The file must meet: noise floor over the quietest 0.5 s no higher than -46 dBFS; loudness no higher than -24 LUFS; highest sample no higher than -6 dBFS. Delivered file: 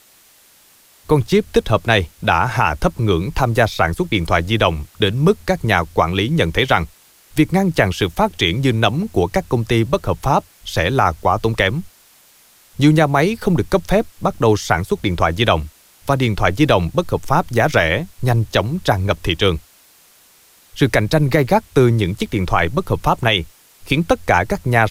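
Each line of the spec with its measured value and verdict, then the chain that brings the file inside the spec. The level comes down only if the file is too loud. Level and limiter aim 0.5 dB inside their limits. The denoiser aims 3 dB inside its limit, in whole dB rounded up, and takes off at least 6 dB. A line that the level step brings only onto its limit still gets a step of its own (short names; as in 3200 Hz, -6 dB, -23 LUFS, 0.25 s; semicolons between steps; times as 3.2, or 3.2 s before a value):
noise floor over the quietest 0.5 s -51 dBFS: OK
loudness -17.5 LUFS: fail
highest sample -2.0 dBFS: fail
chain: gain -7 dB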